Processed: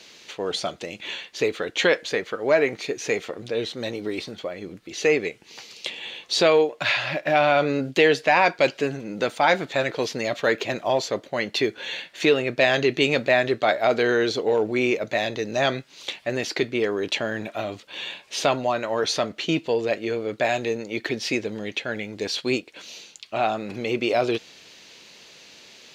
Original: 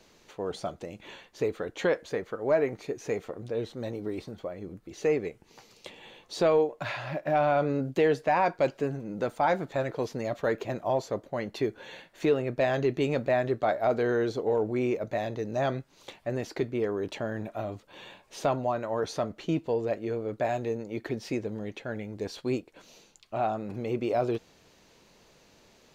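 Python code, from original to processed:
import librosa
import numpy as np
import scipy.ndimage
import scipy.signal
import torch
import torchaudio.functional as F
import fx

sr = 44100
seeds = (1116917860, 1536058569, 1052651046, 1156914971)

y = fx.weighting(x, sr, curve='D')
y = y * librosa.db_to_amplitude(5.5)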